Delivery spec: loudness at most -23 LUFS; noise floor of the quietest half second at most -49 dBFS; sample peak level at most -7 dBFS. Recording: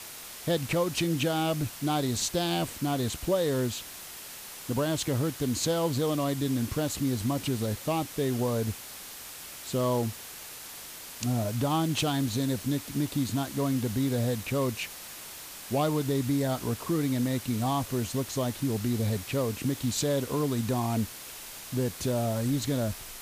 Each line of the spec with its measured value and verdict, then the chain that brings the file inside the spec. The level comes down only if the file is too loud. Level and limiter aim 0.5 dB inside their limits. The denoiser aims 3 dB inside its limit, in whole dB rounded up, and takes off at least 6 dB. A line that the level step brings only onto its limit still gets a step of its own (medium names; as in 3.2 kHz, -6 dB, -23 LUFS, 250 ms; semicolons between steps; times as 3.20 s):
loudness -29.5 LUFS: pass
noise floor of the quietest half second -43 dBFS: fail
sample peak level -15.5 dBFS: pass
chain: noise reduction 9 dB, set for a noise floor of -43 dBFS